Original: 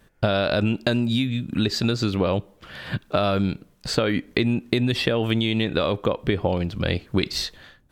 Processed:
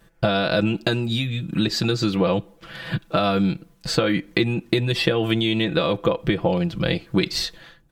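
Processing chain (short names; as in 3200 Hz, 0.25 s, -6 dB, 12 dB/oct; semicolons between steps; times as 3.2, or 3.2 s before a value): comb 6 ms, depth 75%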